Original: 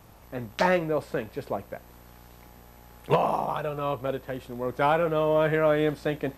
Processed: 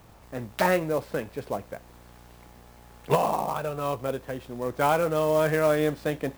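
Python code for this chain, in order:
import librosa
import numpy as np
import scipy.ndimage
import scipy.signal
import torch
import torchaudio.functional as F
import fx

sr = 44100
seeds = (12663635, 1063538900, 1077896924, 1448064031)

y = fx.clock_jitter(x, sr, seeds[0], jitter_ms=0.022)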